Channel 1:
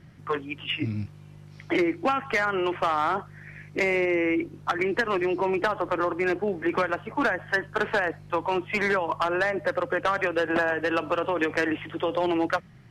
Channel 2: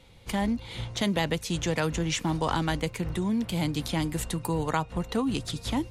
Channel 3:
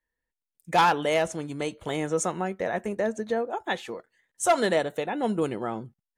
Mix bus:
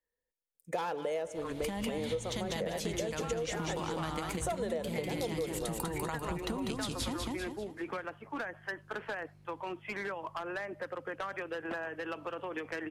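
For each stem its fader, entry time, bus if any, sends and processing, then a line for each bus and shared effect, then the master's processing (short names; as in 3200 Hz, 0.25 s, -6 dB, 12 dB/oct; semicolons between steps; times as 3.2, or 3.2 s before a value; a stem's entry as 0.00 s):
-13.0 dB, 1.15 s, no send, no echo send, dry
+2.5 dB, 1.35 s, no send, echo send -4 dB, compressor, threshold -32 dBFS, peak gain reduction 11 dB
-8.5 dB, 0.00 s, no send, echo send -17.5 dB, bell 490 Hz +12.5 dB 0.7 oct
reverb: off
echo: feedback echo 0.196 s, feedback 37%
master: high shelf 8100 Hz +5 dB; compressor 6:1, threshold -32 dBFS, peak gain reduction 13.5 dB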